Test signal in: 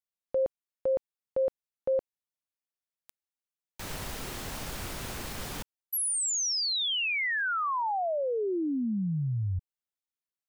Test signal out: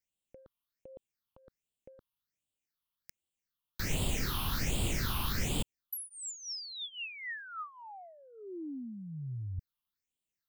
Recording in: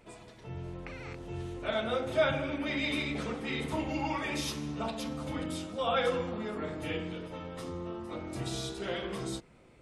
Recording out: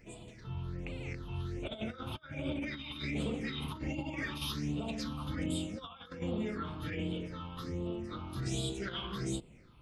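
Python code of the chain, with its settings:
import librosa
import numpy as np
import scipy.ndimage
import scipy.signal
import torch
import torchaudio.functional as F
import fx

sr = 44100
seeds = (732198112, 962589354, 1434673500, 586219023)

y = fx.over_compress(x, sr, threshold_db=-35.0, ratio=-0.5)
y = fx.phaser_stages(y, sr, stages=6, low_hz=490.0, high_hz=1600.0, hz=1.3, feedback_pct=45)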